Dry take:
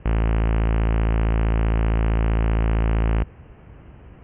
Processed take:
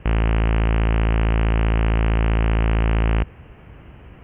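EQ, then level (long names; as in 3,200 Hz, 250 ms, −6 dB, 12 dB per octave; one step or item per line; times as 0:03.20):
high-shelf EQ 2,700 Hz +11 dB
+1.5 dB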